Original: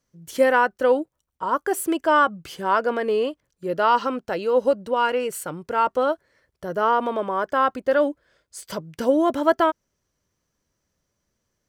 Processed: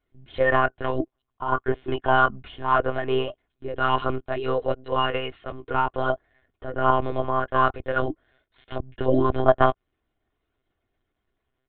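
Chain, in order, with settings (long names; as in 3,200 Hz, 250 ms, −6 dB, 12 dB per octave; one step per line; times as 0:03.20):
flanger 0.19 Hz, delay 1.3 ms, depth 5 ms, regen −9%
one-pitch LPC vocoder at 8 kHz 130 Hz
comb filter 2.8 ms, depth 44%
level +1.5 dB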